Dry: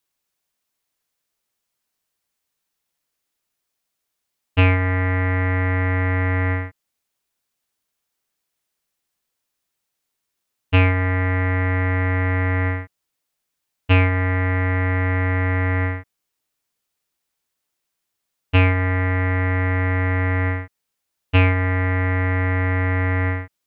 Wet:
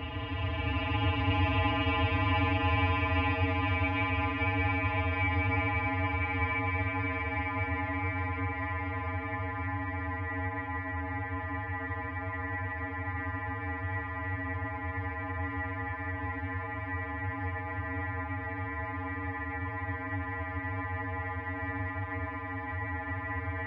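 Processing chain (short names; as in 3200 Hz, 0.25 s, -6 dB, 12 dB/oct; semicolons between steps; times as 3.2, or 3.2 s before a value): metallic resonator 62 Hz, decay 0.43 s, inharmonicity 0.03; Paulstretch 46×, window 0.10 s, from 13.88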